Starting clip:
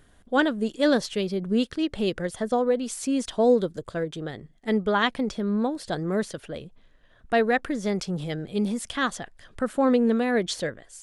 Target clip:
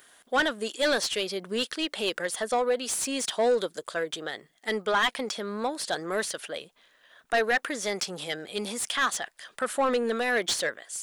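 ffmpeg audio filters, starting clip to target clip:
-filter_complex "[0:a]aemphasis=mode=production:type=riaa,asplit=2[a][b];[b]highpass=f=720:p=1,volume=20dB,asoftclip=type=tanh:threshold=-5dB[c];[a][c]amix=inputs=2:normalize=0,lowpass=f=2.9k:p=1,volume=-6dB,volume=-8dB"

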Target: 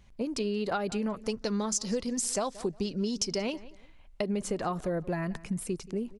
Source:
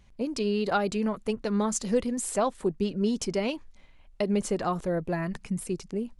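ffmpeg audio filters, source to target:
-filter_complex "[0:a]asettb=1/sr,asplit=3[a][b][c];[a]atrim=end=1.224[d];[b]atrim=start=1.22:end=3.42,asetpts=PTS-STARTPTS,afade=t=in:d=0.004:c=qsin,afade=t=out:st=2.196:d=0.004:c=qsin,equalizer=f=5.3k:t=o:w=0.79:g=13.5[e];[c]atrim=start=3.416[f];[d][e]acrossfade=d=0.004:c1=hsin:c2=qsin[g];[g][f]acrossfade=d=0.004:c1=qsin:c2=hsin,asplit=2[h][i];[i]adelay=178,lowpass=f=4.2k:p=1,volume=-21.5dB,asplit=2[j][k];[k]adelay=178,lowpass=f=4.2k:p=1,volume=0.27[l];[h][j][l]amix=inputs=3:normalize=0,acompressor=threshold=-27dB:ratio=6"

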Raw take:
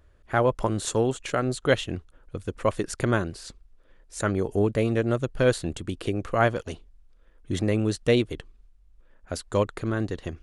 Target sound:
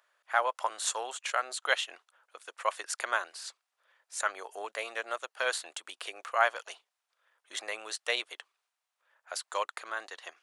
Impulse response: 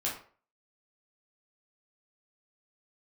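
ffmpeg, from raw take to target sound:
-af "highpass=f=760:w=0.5412,highpass=f=760:w=1.3066"

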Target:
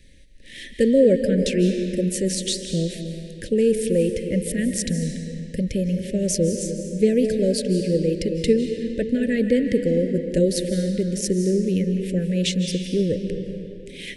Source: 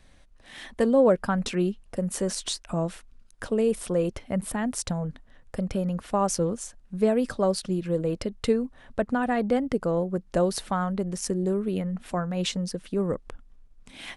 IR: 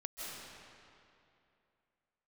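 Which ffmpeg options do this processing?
-filter_complex "[0:a]asuperstop=centerf=990:order=12:qfactor=0.82,asplit=2[a][b];[1:a]atrim=start_sample=2205[c];[b][c]afir=irnorm=-1:irlink=0,volume=-1dB[d];[a][d]amix=inputs=2:normalize=0,volume=1.5dB"

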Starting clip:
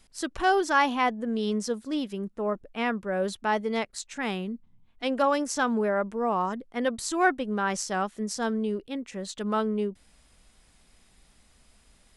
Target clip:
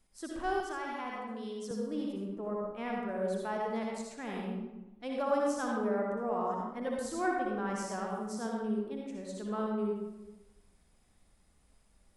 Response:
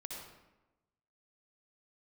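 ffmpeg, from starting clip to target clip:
-filter_complex "[0:a]equalizer=f=3.5k:w=0.54:g=-7[a];[1:a]atrim=start_sample=2205[b];[a][b]afir=irnorm=-1:irlink=0,asettb=1/sr,asplit=3[c][d][e];[c]atrim=end=0.604[f];[d]atrim=start=0.6:end=1.71,asetpts=PTS-STARTPTS,afade=t=in:d=0.004:c=qsin,afade=t=out:st=1.106:d=0.004:c=qsin,acrossover=split=210|1200[g][h][i];[g]acompressor=threshold=-47dB:ratio=4[j];[h]acompressor=threshold=-37dB:ratio=4[k];[i]acompressor=threshold=-38dB:ratio=4[l];[j][k][l]amix=inputs=3:normalize=0[m];[e]atrim=start=1.706[n];[f][m]acrossfade=d=0.004:c1=hsin:c2=qsin[o];[o][n]acrossfade=d=0.004:c1=qsin:c2=hsin,volume=-4dB"

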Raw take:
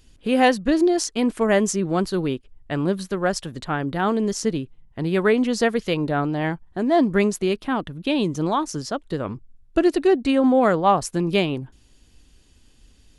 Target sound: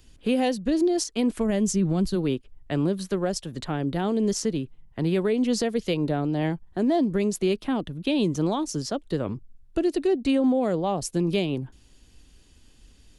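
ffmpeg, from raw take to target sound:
-filter_complex "[0:a]asplit=3[a][b][c];[a]afade=t=out:st=1.36:d=0.02[d];[b]asubboost=boost=5.5:cutoff=200,afade=t=in:st=1.36:d=0.02,afade=t=out:st=2.14:d=0.02[e];[c]afade=t=in:st=2.14:d=0.02[f];[d][e][f]amix=inputs=3:normalize=0,acrossover=split=180|750|2400[g][h][i][j];[i]acompressor=threshold=-43dB:ratio=6[k];[g][h][k][j]amix=inputs=4:normalize=0,alimiter=limit=-15.5dB:level=0:latency=1:release=211"

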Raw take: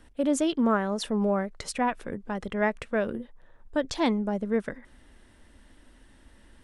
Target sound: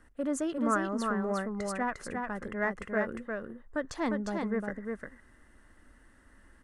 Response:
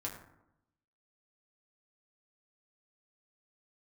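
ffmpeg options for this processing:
-filter_complex "[0:a]asplit=2[a][b];[b]asoftclip=type=tanh:threshold=-25.5dB,volume=-10.5dB[c];[a][c]amix=inputs=2:normalize=0,superequalizer=10b=2:11b=1.78:12b=0.631:13b=0.398:14b=0.631,aecho=1:1:353:0.631,volume=-8dB"

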